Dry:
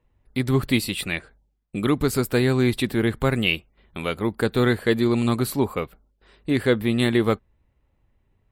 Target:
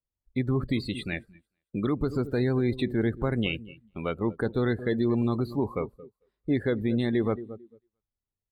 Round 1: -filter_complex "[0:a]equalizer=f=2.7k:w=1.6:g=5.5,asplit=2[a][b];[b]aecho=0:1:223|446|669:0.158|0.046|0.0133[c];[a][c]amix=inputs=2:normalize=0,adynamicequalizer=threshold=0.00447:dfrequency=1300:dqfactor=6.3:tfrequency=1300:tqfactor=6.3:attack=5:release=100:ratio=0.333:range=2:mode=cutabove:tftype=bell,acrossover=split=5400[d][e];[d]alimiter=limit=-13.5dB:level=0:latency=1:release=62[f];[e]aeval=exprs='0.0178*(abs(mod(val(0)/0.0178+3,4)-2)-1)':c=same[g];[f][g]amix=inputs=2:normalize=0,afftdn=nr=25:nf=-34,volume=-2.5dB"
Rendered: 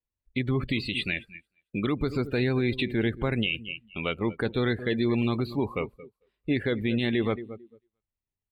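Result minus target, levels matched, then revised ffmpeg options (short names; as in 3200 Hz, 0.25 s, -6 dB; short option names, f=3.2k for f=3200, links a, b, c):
2000 Hz band +5.0 dB
-filter_complex "[0:a]equalizer=f=2.7k:w=1.6:g=-6,asplit=2[a][b];[b]aecho=0:1:223|446|669:0.158|0.046|0.0133[c];[a][c]amix=inputs=2:normalize=0,adynamicequalizer=threshold=0.00447:dfrequency=1300:dqfactor=6.3:tfrequency=1300:tqfactor=6.3:attack=5:release=100:ratio=0.333:range=2:mode=cutabove:tftype=bell,acrossover=split=5400[d][e];[d]alimiter=limit=-13.5dB:level=0:latency=1:release=62[f];[e]aeval=exprs='0.0178*(abs(mod(val(0)/0.0178+3,4)-2)-1)':c=same[g];[f][g]amix=inputs=2:normalize=0,afftdn=nr=25:nf=-34,volume=-2.5dB"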